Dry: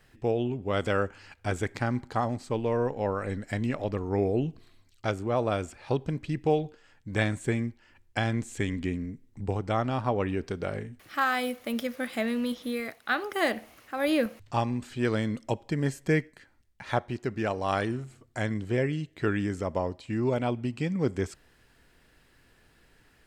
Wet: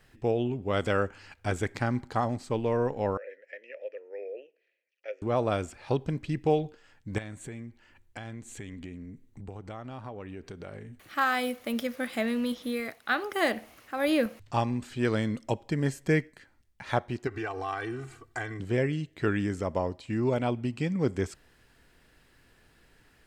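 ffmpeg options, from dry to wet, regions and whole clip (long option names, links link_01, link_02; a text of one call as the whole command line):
ffmpeg -i in.wav -filter_complex "[0:a]asettb=1/sr,asplit=3[link_01][link_02][link_03];[link_01]atrim=end=3.174[link_04];[link_02]atrim=start=3.17:end=5.22,asetpts=PTS-STARTPTS,afade=type=in:duration=0.004:curve=qsin,afade=type=out:start_time=2.046:duration=0.004:curve=qsin,asplit=3[link_05][link_06][link_07];[link_05]bandpass=frequency=530:width_type=q:width=8,volume=0dB[link_08];[link_06]bandpass=frequency=1840:width_type=q:width=8,volume=-6dB[link_09];[link_07]bandpass=frequency=2480:width_type=q:width=8,volume=-9dB[link_10];[link_08][link_09][link_10]amix=inputs=3:normalize=0,highpass=frequency=420:width=0.5412,highpass=frequency=420:width=1.3066,equalizer=frequency=740:width_type=q:width=4:gain=-7,equalizer=frequency=2300:width_type=q:width=4:gain=8,equalizer=frequency=4000:width_type=q:width=4:gain=-8,equalizer=frequency=6000:width_type=q:width=4:gain=8,lowpass=frequency=6300:width=0.5412,lowpass=frequency=6300:width=1.3066[link_11];[link_03]atrim=start=5.216[link_12];[link_04][link_11]acrossfade=duration=0.004:curve1=hsin:curve2=qsin[link_13];[link_13][link_12]acrossfade=duration=0.004:curve1=qsin:curve2=hsin,asettb=1/sr,asplit=3[link_14][link_15][link_16];[link_14]atrim=end=7.184[link_17];[link_15]atrim=start=7.18:end=11.17,asetpts=PTS-STARTPTS,afade=type=in:duration=0.004:curve=qsin,afade=type=out:start_time=3.986:duration=0.004:curve=qsin,acompressor=threshold=-41dB:ratio=3:attack=3.2:release=140:knee=1:detection=peak,bandreject=frequency=5200:width=9.6[link_18];[link_16]atrim=start=11.166[link_19];[link_17][link_18]acrossfade=duration=0.004:curve1=hsin:curve2=qsin[link_20];[link_20][link_19]acrossfade=duration=0.004:curve1=qsin:curve2=hsin,asettb=1/sr,asplit=3[link_21][link_22][link_23];[link_21]atrim=end=17.274[link_24];[link_22]atrim=start=17.27:end=18.6,asetpts=PTS-STARTPTS,afade=type=in:duration=0.004:curve=qsin,afade=type=out:start_time=1.326:duration=0.004:curve=qsin,equalizer=frequency=1400:width_type=o:width=1.8:gain=8.5,acompressor=threshold=-34dB:ratio=4:attack=3.2:release=140:knee=1:detection=peak,aecho=1:1:2.6:0.96,atrim=end_sample=58653[link_25];[link_23]atrim=start=18.596[link_26];[link_24][link_25]acrossfade=duration=0.004:curve1=hsin:curve2=qsin[link_27];[link_27][link_26]acrossfade=duration=0.004:curve1=qsin:curve2=hsin" out.wav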